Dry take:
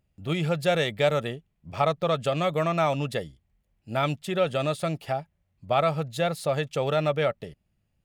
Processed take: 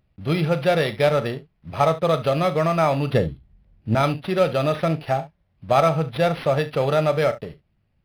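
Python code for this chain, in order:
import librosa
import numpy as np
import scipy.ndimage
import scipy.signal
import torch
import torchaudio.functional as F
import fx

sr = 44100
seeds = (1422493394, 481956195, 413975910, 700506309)

p1 = fx.block_float(x, sr, bits=5)
p2 = fx.low_shelf(p1, sr, hz=360.0, db=11.5, at=(3.12, 3.95))
p3 = fx.rider(p2, sr, range_db=3, speed_s=0.5)
p4 = p2 + F.gain(torch.from_numpy(p3), -1.5).numpy()
p5 = fx.room_early_taps(p4, sr, ms=(37, 70), db=(-12.5, -16.5))
y = np.interp(np.arange(len(p5)), np.arange(len(p5))[::6], p5[::6])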